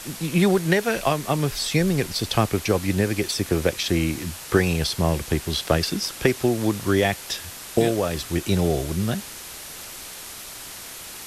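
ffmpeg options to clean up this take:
-af "afwtdn=0.016"

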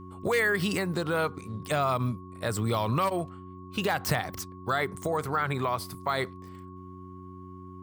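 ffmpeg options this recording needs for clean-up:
-af "bandreject=f=92.1:t=h:w=4,bandreject=f=184.2:t=h:w=4,bandreject=f=276.3:t=h:w=4,bandreject=f=368.4:t=h:w=4,bandreject=f=1.1k:w=30"

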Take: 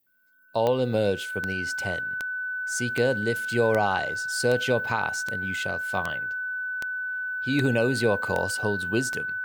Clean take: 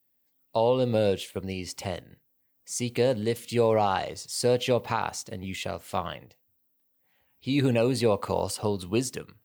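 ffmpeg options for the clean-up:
-af "adeclick=t=4,bandreject=f=1.5k:w=30"

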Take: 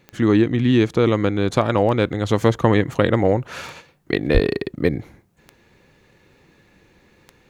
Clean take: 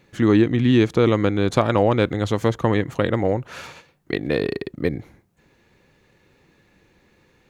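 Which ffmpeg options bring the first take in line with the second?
-filter_complex "[0:a]adeclick=t=4,asplit=3[a][b][c];[a]afade=t=out:st=4.33:d=0.02[d];[b]highpass=f=140:w=0.5412,highpass=f=140:w=1.3066,afade=t=in:st=4.33:d=0.02,afade=t=out:st=4.45:d=0.02[e];[c]afade=t=in:st=4.45:d=0.02[f];[d][e][f]amix=inputs=3:normalize=0,asetnsamples=n=441:p=0,asendcmd='2.29 volume volume -3.5dB',volume=0dB"

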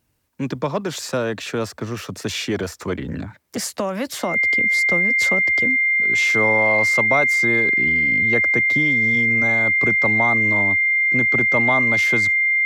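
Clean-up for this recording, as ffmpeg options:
-af "bandreject=f=2.1k:w=30"

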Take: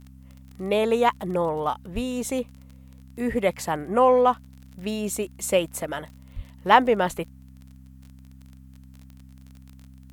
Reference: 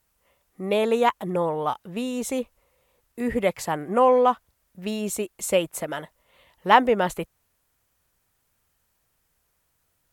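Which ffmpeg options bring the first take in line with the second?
-filter_complex "[0:a]adeclick=t=4,bandreject=f=65.7:t=h:w=4,bandreject=f=131.4:t=h:w=4,bandreject=f=197.1:t=h:w=4,bandreject=f=262.8:t=h:w=4,asplit=3[a][b][c];[a]afade=t=out:st=1.94:d=0.02[d];[b]highpass=f=140:w=0.5412,highpass=f=140:w=1.3066,afade=t=in:st=1.94:d=0.02,afade=t=out:st=2.06:d=0.02[e];[c]afade=t=in:st=2.06:d=0.02[f];[d][e][f]amix=inputs=3:normalize=0,asplit=3[g][h][i];[g]afade=t=out:st=6.35:d=0.02[j];[h]highpass=f=140:w=0.5412,highpass=f=140:w=1.3066,afade=t=in:st=6.35:d=0.02,afade=t=out:st=6.47:d=0.02[k];[i]afade=t=in:st=6.47:d=0.02[l];[j][k][l]amix=inputs=3:normalize=0"

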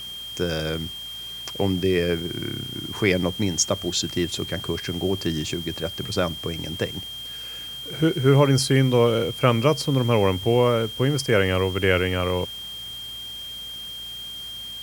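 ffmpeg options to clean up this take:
-af "bandreject=f=58.5:t=h:w=4,bandreject=f=117:t=h:w=4,bandreject=f=175.5:t=h:w=4,bandreject=f=234:t=h:w=4,bandreject=f=292.5:t=h:w=4,bandreject=f=351:t=h:w=4,bandreject=f=3.2k:w=30,afwtdn=0.005"

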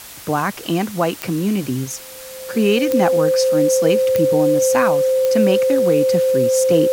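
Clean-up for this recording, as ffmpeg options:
-af "adeclick=t=4,bandreject=f=520:w=30,afftdn=nr=29:nf=-35"

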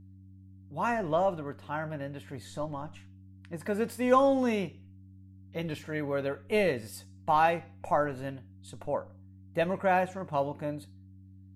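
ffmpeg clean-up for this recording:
-af "bandreject=f=95.3:t=h:w=4,bandreject=f=190.6:t=h:w=4,bandreject=f=285.9:t=h:w=4"

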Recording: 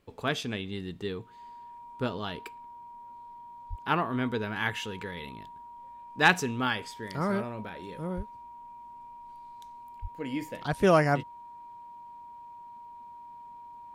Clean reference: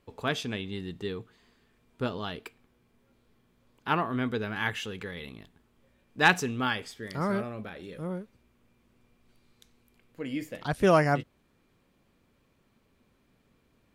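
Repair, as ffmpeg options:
-filter_complex "[0:a]bandreject=f=950:w=30,asplit=3[a][b][c];[a]afade=t=out:st=3.69:d=0.02[d];[b]highpass=f=140:w=0.5412,highpass=f=140:w=1.3066,afade=t=in:st=3.69:d=0.02,afade=t=out:st=3.81:d=0.02[e];[c]afade=t=in:st=3.81:d=0.02[f];[d][e][f]amix=inputs=3:normalize=0,asplit=3[g][h][i];[g]afade=t=out:st=8.16:d=0.02[j];[h]highpass=f=140:w=0.5412,highpass=f=140:w=1.3066,afade=t=in:st=8.16:d=0.02,afade=t=out:st=8.28:d=0.02[k];[i]afade=t=in:st=8.28:d=0.02[l];[j][k][l]amix=inputs=3:normalize=0,asplit=3[m][n][o];[m]afade=t=out:st=10.01:d=0.02[p];[n]highpass=f=140:w=0.5412,highpass=f=140:w=1.3066,afade=t=in:st=10.01:d=0.02,afade=t=out:st=10.13:d=0.02[q];[o]afade=t=in:st=10.13:d=0.02[r];[p][q][r]amix=inputs=3:normalize=0"

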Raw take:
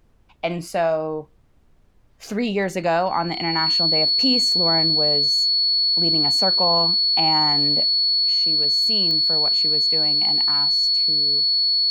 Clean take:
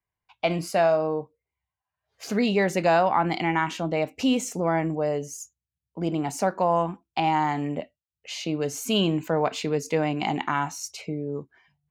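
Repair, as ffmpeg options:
-af "adeclick=t=4,bandreject=f=4.4k:w=30,agate=range=-21dB:threshold=-45dB,asetnsamples=n=441:p=0,asendcmd='8 volume volume 8dB',volume=0dB"

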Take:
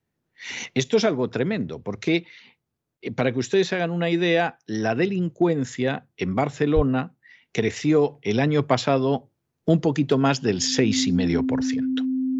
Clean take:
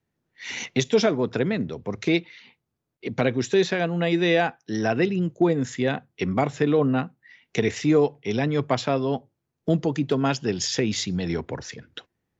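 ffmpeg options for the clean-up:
-filter_complex "[0:a]bandreject=f=260:w=30,asplit=3[a][b][c];[a]afade=t=out:st=6.75:d=0.02[d];[b]highpass=f=140:w=0.5412,highpass=f=140:w=1.3066,afade=t=in:st=6.75:d=0.02,afade=t=out:st=6.87:d=0.02[e];[c]afade=t=in:st=6.87:d=0.02[f];[d][e][f]amix=inputs=3:normalize=0,asetnsamples=n=441:p=0,asendcmd='8.08 volume volume -3dB',volume=0dB"

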